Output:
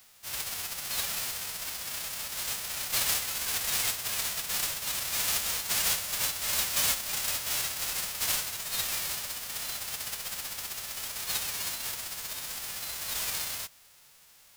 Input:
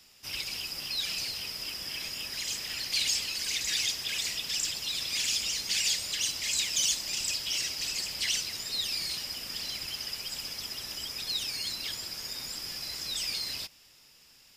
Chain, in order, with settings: spectral whitening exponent 0.1; bell 310 Hz -7.5 dB 1.3 oct; gain +1 dB

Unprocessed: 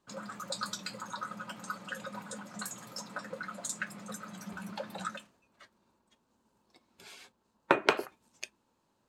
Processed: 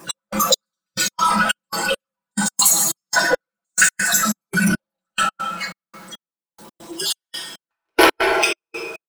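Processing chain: random spectral dropouts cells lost 34%; HPF 150 Hz 12 dB/oct; high shelf 7800 Hz +11.5 dB; comb 6 ms, depth 86%; outdoor echo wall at 25 m, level -8 dB; plate-style reverb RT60 1.7 s, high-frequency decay 0.65×, DRR 5 dB; power-law curve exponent 0.5; step gate "x..xx....x.xx" 139 bpm -60 dB; spectral noise reduction 11 dB; gain +7.5 dB

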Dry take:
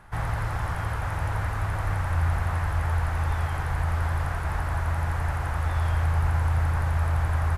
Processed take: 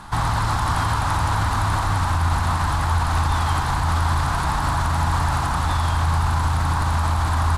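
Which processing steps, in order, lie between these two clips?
graphic EQ 250/500/1000/2000/4000/8000 Hz +10/-7/+10/-5/+12/+9 dB; limiter -20.5 dBFS, peak gain reduction 8.5 dB; lo-fi delay 0.551 s, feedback 55%, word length 10-bit, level -12.5 dB; gain +8 dB

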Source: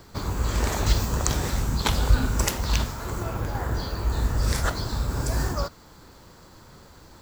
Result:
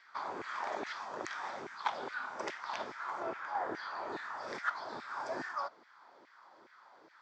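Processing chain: LFO high-pass saw down 2.4 Hz 350–2100 Hz; vocal rider within 3 dB 0.5 s; speaker cabinet 110–4300 Hz, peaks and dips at 480 Hz -8 dB, 2800 Hz -9 dB, 4100 Hz -9 dB; gain -8 dB

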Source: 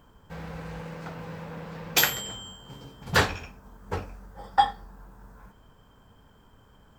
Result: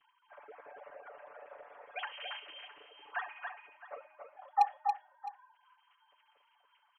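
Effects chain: sine-wave speech; LPF 1300 Hz 6 dB/oct; comb 6.9 ms, depth 98%; in parallel at +1 dB: compressor, threshold -47 dBFS, peak gain reduction 29.5 dB; on the sum: resonator 310 Hz, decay 1 s, mix 70%; wavefolder -20 dBFS; on a send: tapped delay 0.28/0.662 s -5/-16.5 dB; on the sum: gain +3.5 dB

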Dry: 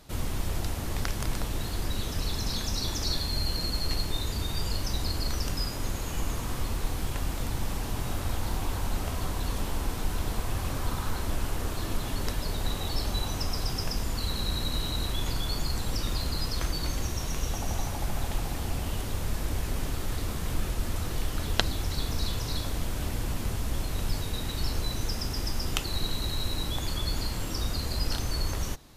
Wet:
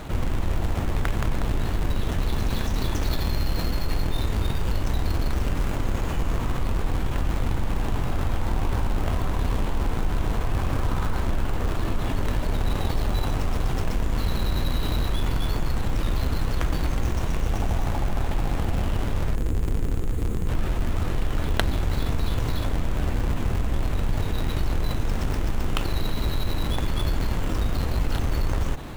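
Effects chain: median filter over 9 samples; spectral gain 19.35–20.49, 530–6300 Hz -10 dB; in parallel at -5 dB: Schmitt trigger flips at -27 dBFS; on the sum: fast leveller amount 50%; gain +1.5 dB

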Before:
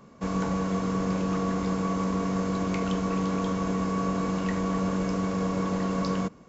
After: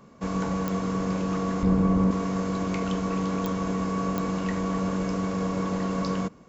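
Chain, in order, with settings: 1.63–2.11 tilt -3 dB/oct; pops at 0.68/3.46/4.18, -15 dBFS

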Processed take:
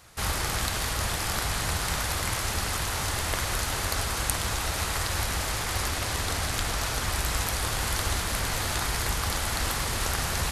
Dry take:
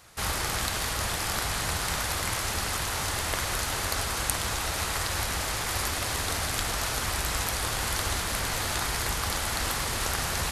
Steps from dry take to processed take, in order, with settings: low shelf 160 Hz +4 dB; 5.65–7.12 Doppler distortion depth 0.15 ms

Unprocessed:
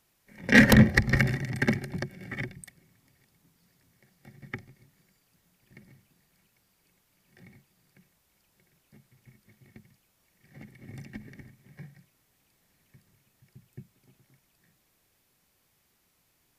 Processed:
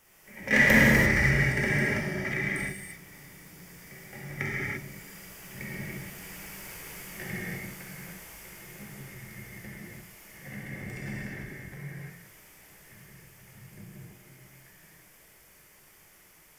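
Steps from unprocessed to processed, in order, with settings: Doppler pass-by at 6.69, 10 m/s, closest 9.5 m; power-law curve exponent 0.7; thirty-one-band EQ 100 Hz -9 dB, 250 Hz -10 dB, 2000 Hz +5 dB, 4000 Hz -10 dB; non-linear reverb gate 0.37 s flat, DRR -7.5 dB; gain +6 dB

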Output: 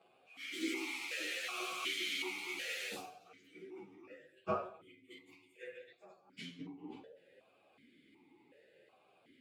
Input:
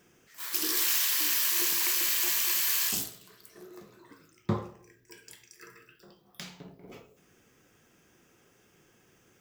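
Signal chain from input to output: inharmonic rescaling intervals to 113%; vowel sequencer 2.7 Hz; gain +14.5 dB

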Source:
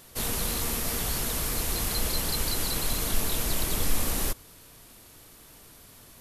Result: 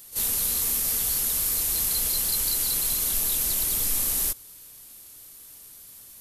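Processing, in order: pre-emphasis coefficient 0.8; pre-echo 38 ms -14.5 dB; gain +5.5 dB

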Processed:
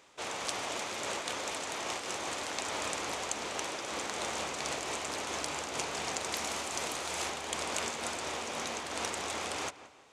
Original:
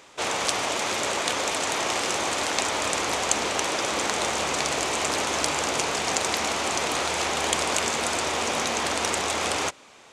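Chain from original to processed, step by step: 6.32–7.3 high shelf 7600 Hz +8 dB; on a send: darkening echo 0.173 s, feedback 45%, low-pass 3000 Hz, level -16 dB; on the sum: noise-modulated level, depth 50%; gain -8.5 dB

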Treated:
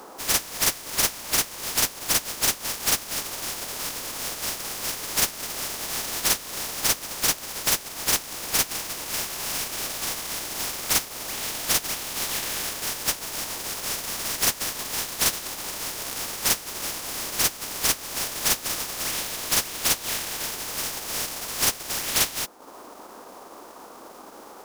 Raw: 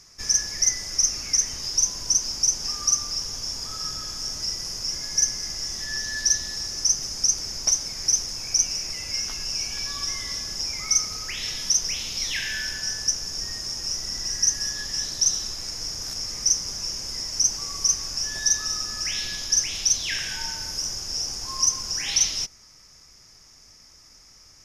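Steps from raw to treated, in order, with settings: spectral contrast lowered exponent 0.12; band noise 230–1200 Hz -44 dBFS; transient shaper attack -1 dB, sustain -8 dB

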